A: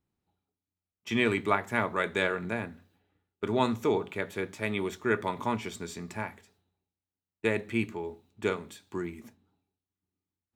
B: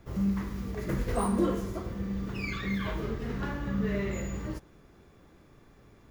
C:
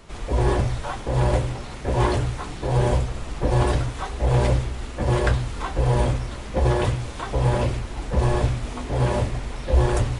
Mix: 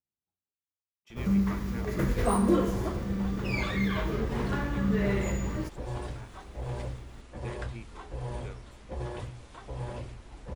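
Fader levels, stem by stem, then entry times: -18.5, +3.0, -16.5 dB; 0.00, 1.10, 2.35 s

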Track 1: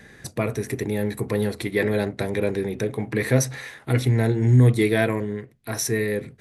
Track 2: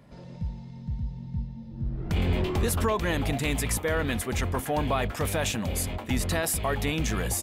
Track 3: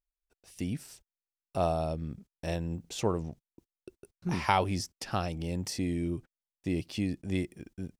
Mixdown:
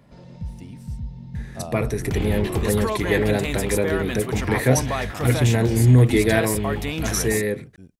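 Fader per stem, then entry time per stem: +1.5, +0.5, -7.0 dB; 1.35, 0.00, 0.00 s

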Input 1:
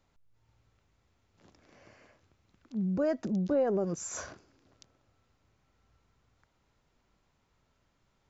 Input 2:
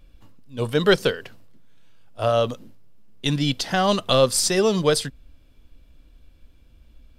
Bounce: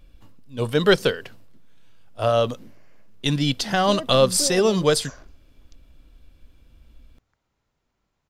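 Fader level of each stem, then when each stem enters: -3.0, +0.5 dB; 0.90, 0.00 s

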